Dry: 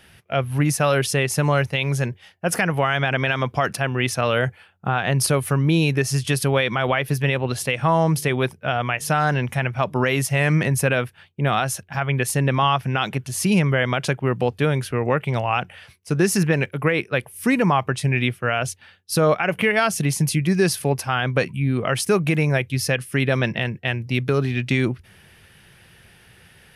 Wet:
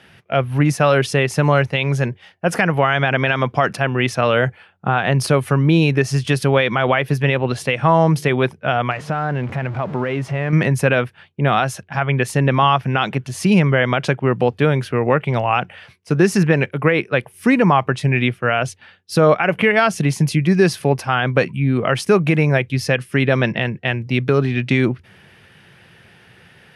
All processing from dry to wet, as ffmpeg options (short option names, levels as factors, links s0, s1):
-filter_complex "[0:a]asettb=1/sr,asplit=3[s0][s1][s2];[s0]atrim=end=8.914[s3];[s1]atrim=start=8.91:end=10.53,asetpts=PTS-STARTPTS,afade=t=in:d=0.004:c=qsin,afade=t=out:st=1.616:d=0.004:c=qsin,aeval=exprs='val(0)+0.5*0.0376*sgn(val(0))':c=same,lowpass=f=1500:p=1,acompressor=threshold=0.0631:ratio=2.5:attack=3.2:release=140:knee=1:detection=peak[s4];[s2]atrim=start=10.526[s5];[s3][s4]acrossfade=d=0.004:c1=hsin:c2=qsin[s6];[s6][s5]acrossfade=d=0.004:c1=qsin:c2=hsin,highpass=110,aemphasis=mode=reproduction:type=50fm,volume=1.68"